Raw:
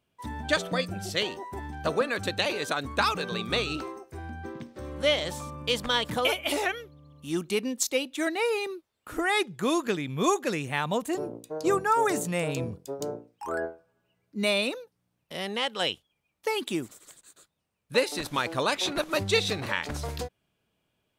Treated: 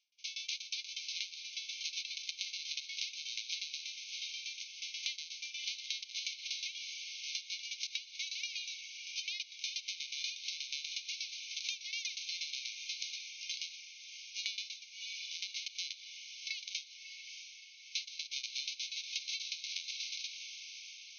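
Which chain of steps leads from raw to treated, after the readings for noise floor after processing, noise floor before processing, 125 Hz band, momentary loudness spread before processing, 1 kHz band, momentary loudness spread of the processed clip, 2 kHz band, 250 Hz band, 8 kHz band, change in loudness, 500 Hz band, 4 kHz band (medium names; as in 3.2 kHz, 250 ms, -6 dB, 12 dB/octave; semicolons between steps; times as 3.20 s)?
-54 dBFS, -78 dBFS, under -40 dB, 13 LU, under -40 dB, 6 LU, -12.5 dB, under -40 dB, -4.5 dB, -11.0 dB, under -40 dB, -5.0 dB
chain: formants flattened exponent 0.1; in parallel at -9.5 dB: wavefolder -17.5 dBFS; on the sum: tremolo saw down 8.3 Hz, depth 95%; on a send: echo that smears into a reverb 642 ms, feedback 55%, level -12 dB; on the sum: dynamic bell 4 kHz, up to +6 dB, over -50 dBFS, Q 4.6; brick-wall FIR band-pass 2.1–6.5 kHz; compression 6:1, threshold -38 dBFS, peak gain reduction 15.5 dB; trim +1 dB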